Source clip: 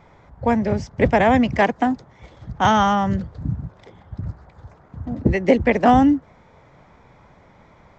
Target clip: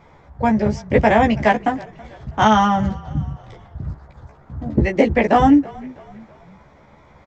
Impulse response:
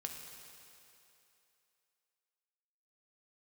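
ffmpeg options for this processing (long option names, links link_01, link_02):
-filter_complex "[0:a]atempo=1.1,asplit=2[link_01][link_02];[link_02]adelay=14,volume=-3dB[link_03];[link_01][link_03]amix=inputs=2:normalize=0,asplit=2[link_04][link_05];[link_05]asplit=3[link_06][link_07][link_08];[link_06]adelay=325,afreqshift=-33,volume=-22dB[link_09];[link_07]adelay=650,afreqshift=-66,volume=-28.7dB[link_10];[link_08]adelay=975,afreqshift=-99,volume=-35.5dB[link_11];[link_09][link_10][link_11]amix=inputs=3:normalize=0[link_12];[link_04][link_12]amix=inputs=2:normalize=0"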